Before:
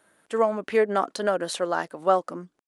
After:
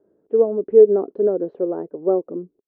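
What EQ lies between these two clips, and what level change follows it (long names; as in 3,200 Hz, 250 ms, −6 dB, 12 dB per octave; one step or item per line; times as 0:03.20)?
low-pass with resonance 410 Hz, resonance Q 4.9
high-frequency loss of the air 150 metres
0.0 dB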